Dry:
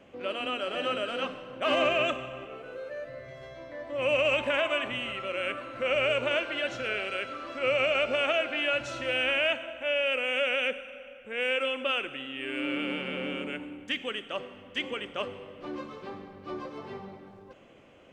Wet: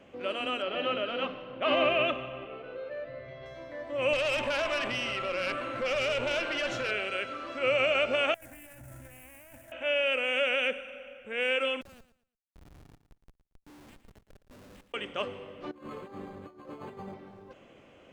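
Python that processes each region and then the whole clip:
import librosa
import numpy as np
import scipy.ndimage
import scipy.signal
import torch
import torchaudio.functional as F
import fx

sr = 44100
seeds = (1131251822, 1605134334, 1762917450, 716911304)

y = fx.chain(x, sr, fx.lowpass(hz=4200.0, slope=24),
    fx.peak_eq(hz=1600.0, db=-4.0, octaves=0.27), at=(0.62, 3.46))
y = fx.chain(y, sr, fx.tube_stage(drive_db=24.0, bias=0.6),
    fx.env_flatten(amount_pct=50), at=(4.13, 6.91))
y = fx.chain(y, sr, fx.median_filter(points=25),
    fx.curve_eq(hz=(120.0, 190.0, 280.0, 430.0, 810.0, 1200.0, 1700.0, 4100.0, 8800.0), db=(0, -11, -12, -23, -12, -19, -5, -24, 4)),
    fx.over_compress(threshold_db=-50.0, ratio=-1.0), at=(8.34, 9.72))
y = fx.chain(y, sr, fx.gate_flip(shuts_db=-30.0, range_db=-24),
    fx.schmitt(flips_db=-49.0),
    fx.echo_feedback(ms=114, feedback_pct=26, wet_db=-13.0), at=(11.81, 14.94))
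y = fx.chain(y, sr, fx.over_compress(threshold_db=-43.0, ratio=-0.5),
    fx.resample_linear(factor=8), at=(15.71, 17.14))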